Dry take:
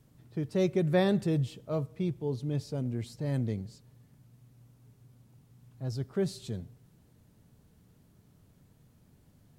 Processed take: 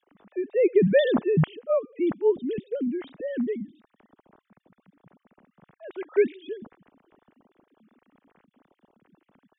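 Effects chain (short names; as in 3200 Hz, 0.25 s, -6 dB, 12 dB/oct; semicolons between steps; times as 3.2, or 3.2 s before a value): sine-wave speech; 5.92–6.35 synth low-pass 2300 Hz, resonance Q 7.9; gain +6 dB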